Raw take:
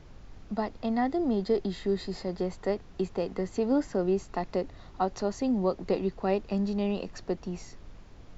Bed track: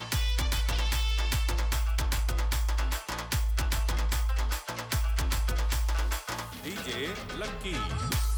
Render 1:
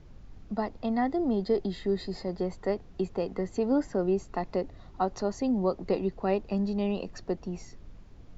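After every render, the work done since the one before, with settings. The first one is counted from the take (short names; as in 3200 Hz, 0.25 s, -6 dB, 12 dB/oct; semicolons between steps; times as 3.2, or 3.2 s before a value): denoiser 6 dB, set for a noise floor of -50 dBFS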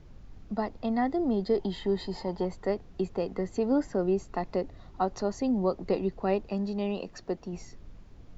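1.59–2.45 small resonant body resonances 910/3100 Hz, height 13 dB, ringing for 25 ms; 6.48–7.53 low shelf 140 Hz -8 dB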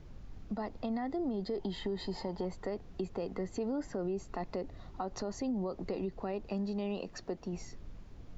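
limiter -23.5 dBFS, peak gain reduction 9 dB; compressor 2:1, threshold -35 dBFS, peak gain reduction 5 dB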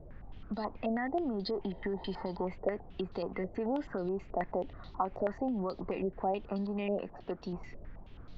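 stepped low-pass 9.3 Hz 620–4100 Hz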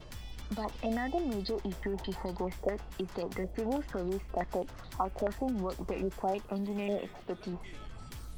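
add bed track -18.5 dB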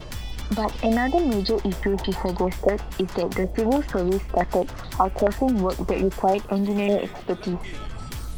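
gain +12 dB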